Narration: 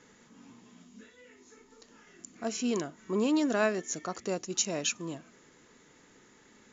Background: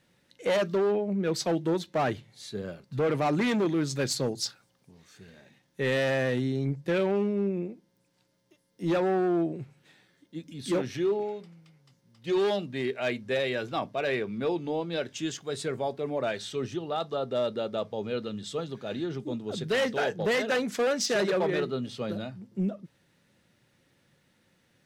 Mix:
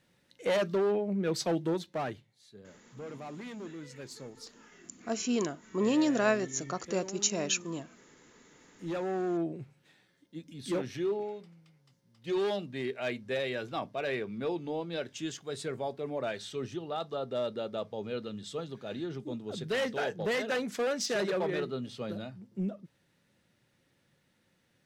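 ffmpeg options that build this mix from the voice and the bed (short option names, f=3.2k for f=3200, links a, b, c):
-filter_complex "[0:a]adelay=2650,volume=0.5dB[a];[1:a]volume=10dB,afade=t=out:st=1.6:d=0.78:silence=0.188365,afade=t=in:st=8.43:d=1.04:silence=0.237137[b];[a][b]amix=inputs=2:normalize=0"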